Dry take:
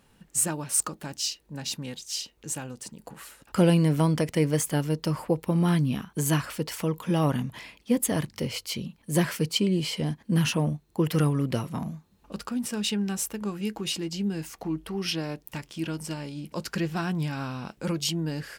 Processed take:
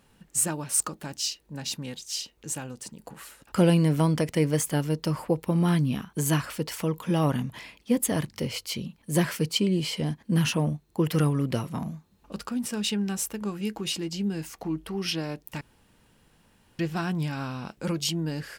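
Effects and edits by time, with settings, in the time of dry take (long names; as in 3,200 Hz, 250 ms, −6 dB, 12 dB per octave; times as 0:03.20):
0:15.61–0:16.79: fill with room tone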